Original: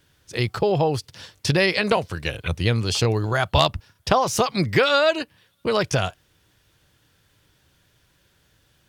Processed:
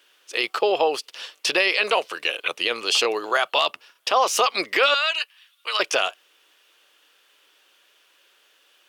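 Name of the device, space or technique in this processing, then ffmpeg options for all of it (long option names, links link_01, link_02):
laptop speaker: -filter_complex "[0:a]highpass=frequency=390:width=0.5412,highpass=frequency=390:width=1.3066,equalizer=frequency=1200:width_type=o:width=0.25:gain=6,equalizer=frequency=2800:width_type=o:width=0.6:gain=9,alimiter=limit=-10dB:level=0:latency=1:release=21,asettb=1/sr,asplit=3[link_01][link_02][link_03];[link_01]atrim=end=4.944[link_04];[link_02]atrim=start=4.94:end=5.8,asetpts=PTS-STARTPTS,afade=type=in:duration=0.004:curve=qsin,afade=type=out:start_time=0.856:duration=0.004:curve=qsin,highpass=1400[link_05];[link_03]atrim=start=5.796[link_06];[link_04][link_05]acrossfade=duration=0.004:curve1=hsin:curve2=qsin[link_07];[link_07][link_06]acrossfade=duration=0.004:curve1=qsin:curve2=hsin,volume=1.5dB"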